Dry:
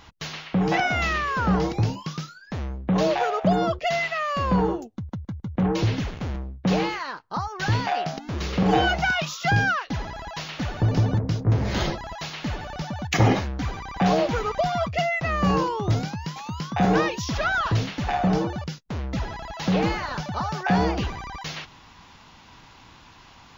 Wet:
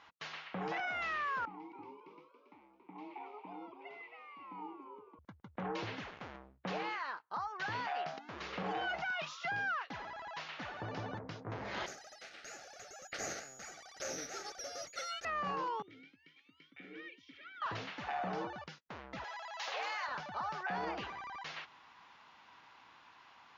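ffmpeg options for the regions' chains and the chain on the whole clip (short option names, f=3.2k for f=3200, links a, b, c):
-filter_complex "[0:a]asettb=1/sr,asplit=3[a][b][c];[a]atrim=end=1.454[d];[b]atrim=start=1.45:end=5.19,asetpts=PTS-STARTPTS,afade=t=in:d=0.004:c=qsin,afade=t=out:st=3.736:d=0.004:c=qsin,asplit=3[e][f][g];[e]bandpass=f=300:t=q:w=8,volume=0dB[h];[f]bandpass=f=870:t=q:w=8,volume=-6dB[i];[g]bandpass=f=2.24k:t=q:w=8,volume=-9dB[j];[h][i][j]amix=inputs=3:normalize=0,asplit=5[k][l][m][n][o];[l]adelay=278,afreqshift=86,volume=-7dB[p];[m]adelay=556,afreqshift=172,volume=-17.2dB[q];[n]adelay=834,afreqshift=258,volume=-27.3dB[r];[o]adelay=1112,afreqshift=344,volume=-37.5dB[s];[k][p][q][r][s]amix=inputs=5:normalize=0,atrim=end_sample=164934[t];[c]atrim=start=5.186[u];[d][t]acrossfade=d=0.004:c1=hsin:c2=qsin[v];[v][u]acrossfade=d=0.004:c1=qsin:c2=hsin,asettb=1/sr,asplit=3[w][x][y];[w]atrim=end=11.864[z];[x]atrim=start=11.86:end=15.25,asetpts=PTS-STARTPTS,afade=t=in:d=0.004:c=qsin,afade=t=out:st=3.386:d=0.004:c=qsin,lowpass=f=3k:t=q:w=0.5098,lowpass=f=3k:t=q:w=0.6013,lowpass=f=3k:t=q:w=0.9,lowpass=f=3k:t=q:w=2.563,afreqshift=-3500,aeval=exprs='abs(val(0))':c=same,asuperstop=centerf=1000:order=4:qfactor=2.7[aa];[y]atrim=start=15.246[ab];[z][aa]acrossfade=d=0.004:c1=hsin:c2=qsin[ac];[ac][ab]acrossfade=d=0.004:c1=qsin:c2=hsin,asettb=1/sr,asplit=3[ad][ae][af];[ad]atrim=end=15.824[ag];[ae]atrim=start=15.82:end=17.62,asetpts=PTS-STARTPTS,afade=t=in:d=0.004:c=qsin,afade=t=out:st=1.796:d=0.004:c=qsin,asplit=3[ah][ai][aj];[ah]bandpass=f=270:t=q:w=8,volume=0dB[ak];[ai]bandpass=f=2.29k:t=q:w=8,volume=-6dB[al];[aj]bandpass=f=3.01k:t=q:w=8,volume=-9dB[am];[ak][al][am]amix=inputs=3:normalize=0,aecho=1:1:2.2:0.54,atrim=end_sample=79380[an];[af]atrim=start=17.616[ao];[ag][an]acrossfade=d=0.004:c1=hsin:c2=qsin[ap];[ap][ao]acrossfade=d=0.004:c1=qsin:c2=hsin,asettb=1/sr,asplit=3[aq][ar][as];[aq]atrim=end=19.244[at];[ar]atrim=start=19.24:end=20.07,asetpts=PTS-STARTPTS,afade=t=in:d=0.004:c=qsin,afade=t=out:st=0.826:d=0.004:c=qsin,highpass=f=550:w=0.5412,highpass=f=550:w=1.3066,aemphasis=mode=production:type=75fm,bandreject=f=1.4k:w=24[au];[as]atrim=start=20.066[av];[at][au]acrossfade=d=0.004:c1=hsin:c2=qsin[aw];[aw][av]acrossfade=d=0.004:c1=qsin:c2=hsin,lowpass=1.4k,aderivative,alimiter=level_in=16dB:limit=-24dB:level=0:latency=1:release=22,volume=-16dB,volume=10dB"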